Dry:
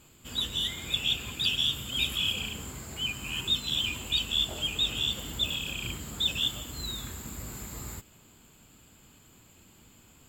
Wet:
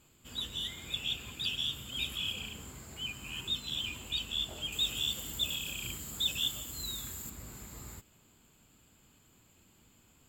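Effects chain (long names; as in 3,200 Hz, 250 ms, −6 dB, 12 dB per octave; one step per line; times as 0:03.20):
0:04.72–0:07.30: high-shelf EQ 5,500 Hz +11.5 dB
level −7 dB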